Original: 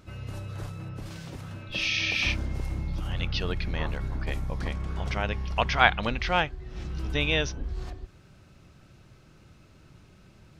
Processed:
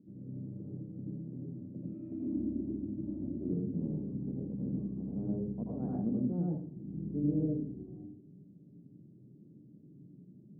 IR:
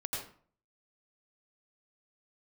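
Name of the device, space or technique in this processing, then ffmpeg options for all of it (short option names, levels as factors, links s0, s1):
next room: -filter_complex "[0:a]lowpass=f=290:w=0.5412,lowpass=f=290:w=1.3066[s0];[1:a]atrim=start_sample=2205[s1];[s0][s1]afir=irnorm=-1:irlink=0,highpass=f=180:w=0.5412,highpass=f=180:w=1.3066,asettb=1/sr,asplit=3[s2][s3][s4];[s2]atrim=end=1.944[s5];[s3]atrim=start=1.94:end=3.53,asetpts=PTS-STARTPTS,afade=t=in:d=0.004:c=qsin,afade=t=out:st=1.586:d=0.004:c=qsin,aecho=1:1:3.2:0.85,atrim=end_sample=70119[s6];[s4]atrim=start=3.526[s7];[s5][s6]acrossfade=d=0.004:c1=hsin:c2=qsin[s8];[s8][s7]acrossfade=d=0.004:c1=qsin:c2=hsin,volume=1.78"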